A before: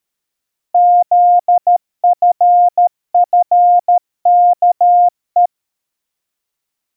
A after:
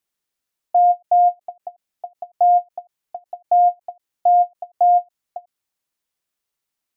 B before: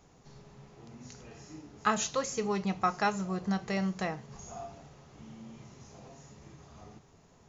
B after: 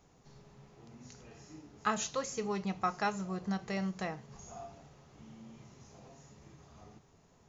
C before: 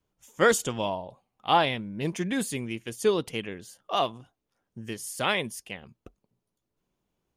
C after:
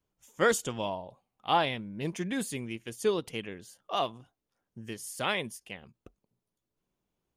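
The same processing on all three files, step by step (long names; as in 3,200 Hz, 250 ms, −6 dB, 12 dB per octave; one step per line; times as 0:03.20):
every ending faded ahead of time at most 540 dB per second
level −4 dB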